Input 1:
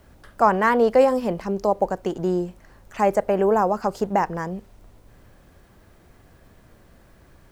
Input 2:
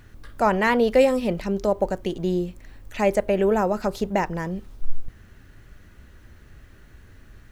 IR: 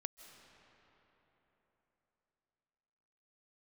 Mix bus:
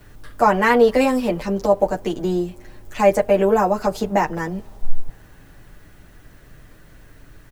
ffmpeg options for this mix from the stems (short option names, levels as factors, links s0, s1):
-filter_complex "[0:a]highshelf=f=6300:g=8.5,volume=0.75,asplit=2[s0][s1];[s1]volume=0.211[s2];[1:a]aecho=1:1:6.7:0.65,adelay=7.9,volume=1.06[s3];[2:a]atrim=start_sample=2205[s4];[s2][s4]afir=irnorm=-1:irlink=0[s5];[s0][s3][s5]amix=inputs=3:normalize=0"